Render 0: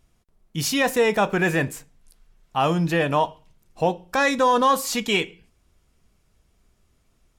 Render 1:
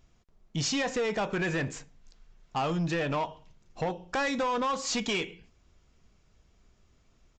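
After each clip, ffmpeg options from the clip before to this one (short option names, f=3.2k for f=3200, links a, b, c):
-af "acompressor=threshold=-22dB:ratio=6,aresample=16000,asoftclip=type=tanh:threshold=-24dB,aresample=44100"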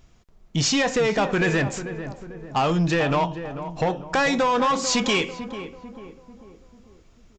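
-filter_complex "[0:a]asplit=2[a][b];[b]adelay=444,lowpass=f=1.2k:p=1,volume=-10dB,asplit=2[c][d];[d]adelay=444,lowpass=f=1.2k:p=1,volume=0.5,asplit=2[e][f];[f]adelay=444,lowpass=f=1.2k:p=1,volume=0.5,asplit=2[g][h];[h]adelay=444,lowpass=f=1.2k:p=1,volume=0.5,asplit=2[i][j];[j]adelay=444,lowpass=f=1.2k:p=1,volume=0.5[k];[a][c][e][g][i][k]amix=inputs=6:normalize=0,volume=8dB"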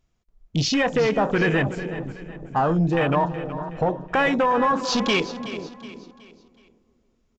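-af "afwtdn=0.0501,aecho=1:1:371|742|1113|1484:0.211|0.0845|0.0338|0.0135,volume=1dB"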